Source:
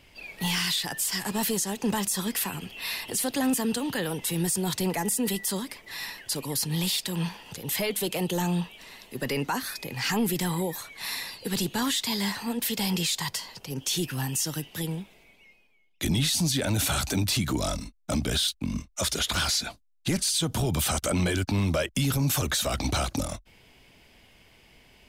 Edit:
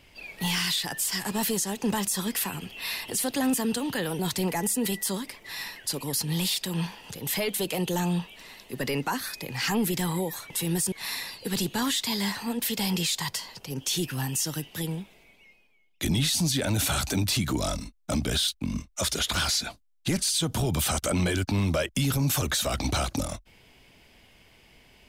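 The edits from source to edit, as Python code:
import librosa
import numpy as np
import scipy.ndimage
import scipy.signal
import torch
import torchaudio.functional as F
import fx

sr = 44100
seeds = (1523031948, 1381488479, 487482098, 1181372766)

y = fx.edit(x, sr, fx.move(start_s=4.19, length_s=0.42, to_s=10.92), tone=tone)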